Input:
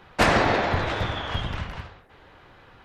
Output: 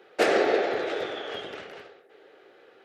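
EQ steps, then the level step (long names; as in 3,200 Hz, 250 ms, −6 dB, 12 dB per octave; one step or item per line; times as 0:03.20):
high-pass with resonance 410 Hz, resonance Q 3.8
parametric band 1,000 Hz −15 dB 0.26 octaves
−5.0 dB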